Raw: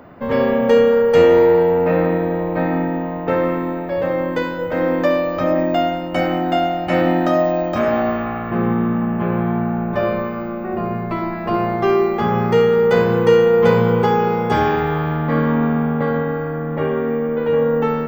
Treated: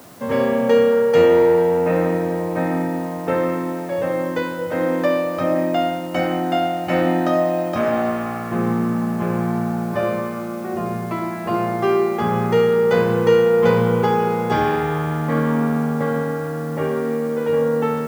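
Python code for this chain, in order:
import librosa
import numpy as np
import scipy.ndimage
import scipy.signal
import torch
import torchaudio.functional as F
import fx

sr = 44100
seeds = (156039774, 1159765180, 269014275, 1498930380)

p1 = scipy.signal.sosfilt(scipy.signal.butter(4, 83.0, 'highpass', fs=sr, output='sos'), x)
p2 = fx.quant_dither(p1, sr, seeds[0], bits=6, dither='triangular')
p3 = p1 + (p2 * librosa.db_to_amplitude(-7.5))
y = p3 * librosa.db_to_amplitude(-5.0)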